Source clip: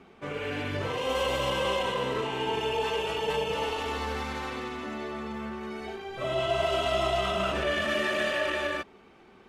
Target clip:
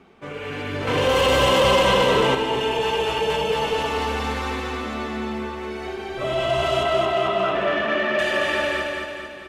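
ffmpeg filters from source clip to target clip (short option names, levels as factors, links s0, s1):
-filter_complex "[0:a]asettb=1/sr,asplit=3[s0][s1][s2];[s0]atrim=end=6.834[s3];[s1]atrim=start=6.83:end=8.19,asetpts=PTS-STARTPTS,afade=t=in:d=0.004:c=qsin,afade=t=out:st=1.356:d=0.004:c=qsin,highpass=180,lowpass=2500[s4];[s2]atrim=start=8.186[s5];[s3][s4]acrossfade=d=0.004:c1=hsin:c2=qsin[s6];[s6][s5]acrossfade=d=0.004:c1=qsin:c2=hsin,aecho=1:1:222|444|666|888|1110|1332|1554:0.631|0.341|0.184|0.0994|0.0537|0.029|0.0156,asettb=1/sr,asplit=3[s7][s8][s9];[s7]atrim=end=0.874[s10];[s8]atrim=start=0.87:end=2.35,asetpts=PTS-STARTPTS,afade=t=in:d=0.004:c=qsin,afade=t=out:st=1.476:d=0.004:c=qsin,acontrast=61[s11];[s9]atrim=start=2.346[s12];[s10][s11]acrossfade=d=0.004:c1=hsin:c2=qsin[s13];[s13][s12]acrossfade=d=0.004:c1=qsin:c2=hsin,asoftclip=type=tanh:threshold=0.158,dynaudnorm=f=210:g=9:m=1.58,volume=1.19"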